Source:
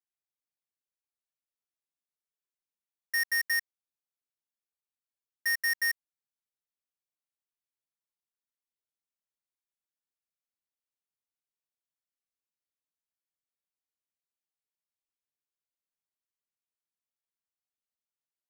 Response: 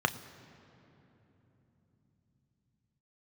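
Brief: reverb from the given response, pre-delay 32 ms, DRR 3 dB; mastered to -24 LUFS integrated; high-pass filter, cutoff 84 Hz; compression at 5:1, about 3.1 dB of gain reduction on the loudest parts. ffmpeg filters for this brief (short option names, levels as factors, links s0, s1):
-filter_complex "[0:a]highpass=84,acompressor=threshold=0.0316:ratio=5,asplit=2[s0][s1];[1:a]atrim=start_sample=2205,adelay=32[s2];[s1][s2]afir=irnorm=-1:irlink=0,volume=0.224[s3];[s0][s3]amix=inputs=2:normalize=0,volume=2.99"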